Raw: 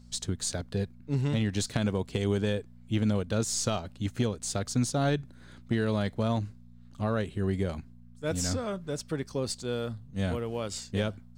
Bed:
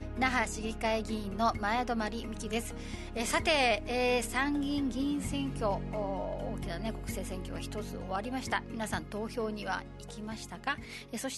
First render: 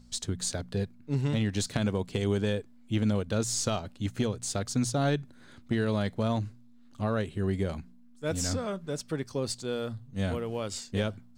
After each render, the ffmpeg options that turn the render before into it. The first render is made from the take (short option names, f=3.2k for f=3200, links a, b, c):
-af "bandreject=f=60:t=h:w=4,bandreject=f=120:t=h:w=4,bandreject=f=180:t=h:w=4"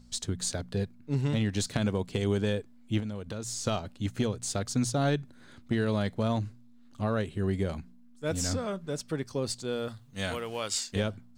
-filter_complex "[0:a]asettb=1/sr,asplit=3[a][b][c];[a]atrim=end=3.004[d];[b]atrim=start=3:end=3.65,asetpts=PTS-STARTPTS,afade=t=in:d=0.004:c=qsin,afade=t=out:st=0.646:d=0.004:c=qsin,acompressor=threshold=-33dB:ratio=4:attack=3.2:release=140:knee=1:detection=peak[e];[c]atrim=start=3.646[f];[d][e]acrossfade=d=0.004:c1=hsin:c2=qsin[g];[g][f]acrossfade=d=0.004:c1=qsin:c2=hsin,asettb=1/sr,asplit=3[h][i][j];[h]atrim=end=9.884[k];[i]atrim=start=9.88:end=10.96,asetpts=PTS-STARTPTS,afade=t=in:d=0.004:c=qsin,afade=t=out:st=1.076:d=0.004:c=qsin,tiltshelf=f=640:g=-7.5[l];[j]atrim=start=10.956[m];[k][l]acrossfade=d=0.004:c1=hsin:c2=qsin[n];[n][m]acrossfade=d=0.004:c1=qsin:c2=hsin"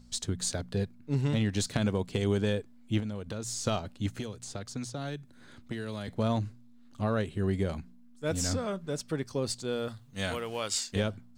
-filter_complex "[0:a]asettb=1/sr,asplit=3[a][b][c];[a]atrim=end=4.124[d];[b]atrim=start=4.12:end=6.08,asetpts=PTS-STARTPTS,afade=t=in:d=0.004:c=qsin,afade=t=out:st=1.956:d=0.004:c=qsin,acrossover=split=290|1500|6600[e][f][g][h];[e]acompressor=threshold=-41dB:ratio=3[i];[f]acompressor=threshold=-43dB:ratio=3[j];[g]acompressor=threshold=-47dB:ratio=3[k];[h]acompressor=threshold=-54dB:ratio=3[l];[i][j][k][l]amix=inputs=4:normalize=0[m];[c]atrim=start=6.076[n];[d][m]acrossfade=d=0.004:c1=hsin:c2=qsin[o];[o][n]acrossfade=d=0.004:c1=qsin:c2=hsin"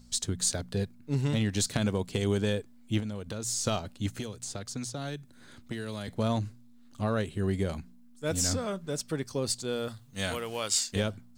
-af "highshelf=f=5.4k:g=7.5"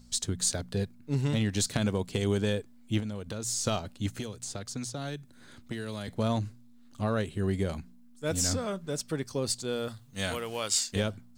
-af anull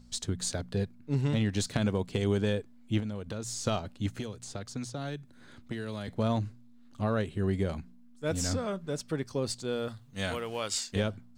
-af "highshelf=f=5.3k:g=-9.5"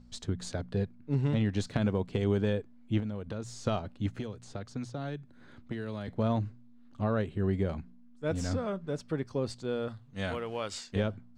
-af "aemphasis=mode=reproduction:type=75kf"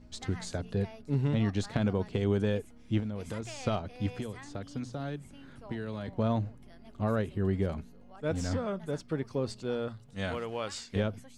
-filter_complex "[1:a]volume=-18.5dB[a];[0:a][a]amix=inputs=2:normalize=0"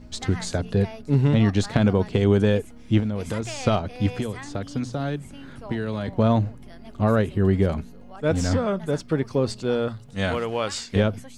-af "volume=9.5dB"